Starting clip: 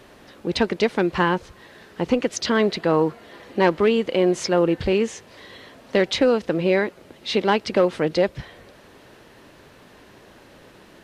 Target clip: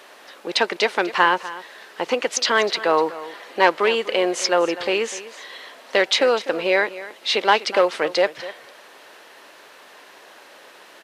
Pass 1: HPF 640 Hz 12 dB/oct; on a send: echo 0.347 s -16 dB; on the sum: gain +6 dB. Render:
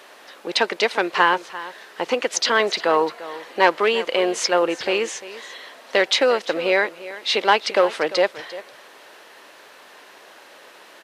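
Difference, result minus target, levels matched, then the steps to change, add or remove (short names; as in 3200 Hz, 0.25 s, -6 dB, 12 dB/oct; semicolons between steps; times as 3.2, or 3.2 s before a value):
echo 98 ms late
change: echo 0.249 s -16 dB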